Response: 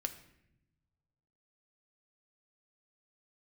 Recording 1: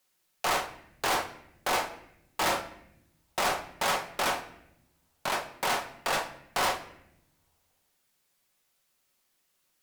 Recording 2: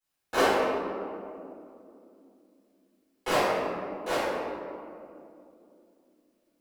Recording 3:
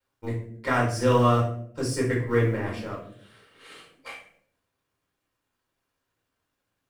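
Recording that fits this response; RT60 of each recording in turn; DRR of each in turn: 1; 0.80, 2.7, 0.60 s; 6.0, -19.0, -4.0 dB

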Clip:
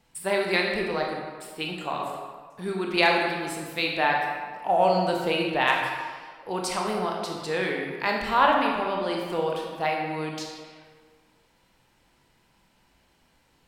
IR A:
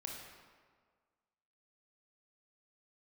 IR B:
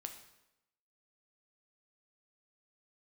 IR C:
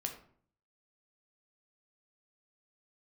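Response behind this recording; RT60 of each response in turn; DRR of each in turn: A; 1.7, 0.90, 0.55 s; -0.5, 5.0, 3.0 dB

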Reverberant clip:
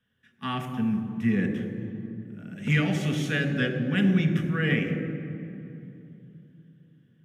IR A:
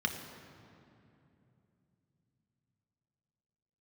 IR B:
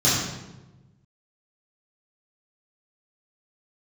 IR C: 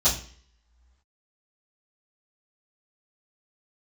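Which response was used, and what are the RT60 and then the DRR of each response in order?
A; 2.9 s, 1.1 s, not exponential; 3.5, -11.5, -15.0 dB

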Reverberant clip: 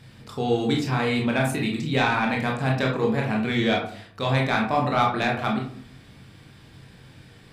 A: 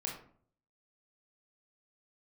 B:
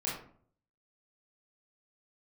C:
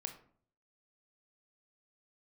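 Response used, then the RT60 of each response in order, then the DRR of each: A; 0.55, 0.55, 0.55 s; -1.5, -6.5, 5.5 dB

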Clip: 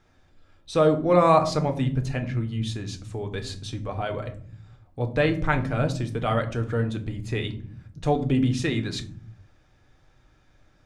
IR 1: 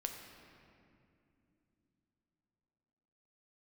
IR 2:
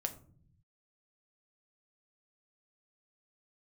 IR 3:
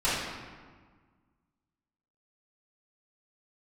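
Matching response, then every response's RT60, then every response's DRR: 2; not exponential, 0.50 s, 1.5 s; 3.0, 5.0, -12.5 dB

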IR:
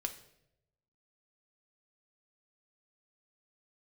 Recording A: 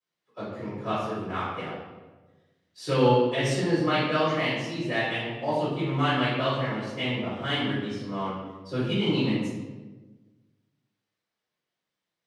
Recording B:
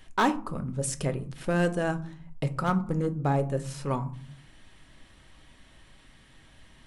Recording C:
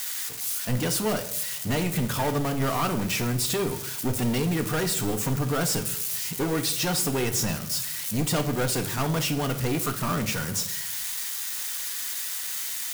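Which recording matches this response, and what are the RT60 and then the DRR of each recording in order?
C; 1.2, 0.50, 0.80 s; -15.0, 8.5, 5.5 dB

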